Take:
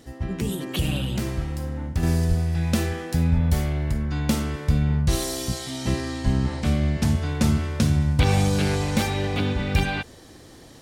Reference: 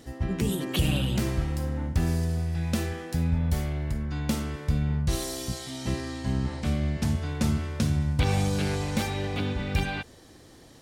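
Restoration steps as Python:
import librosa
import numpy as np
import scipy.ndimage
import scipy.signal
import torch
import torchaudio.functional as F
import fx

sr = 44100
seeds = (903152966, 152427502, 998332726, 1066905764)

y = fx.highpass(x, sr, hz=140.0, slope=24, at=(2.28, 2.4), fade=0.02)
y = fx.highpass(y, sr, hz=140.0, slope=24, at=(3.34, 3.46), fade=0.02)
y = fx.highpass(y, sr, hz=140.0, slope=24, at=(6.24, 6.36), fade=0.02)
y = fx.gain(y, sr, db=fx.steps((0.0, 0.0), (2.03, -5.0)))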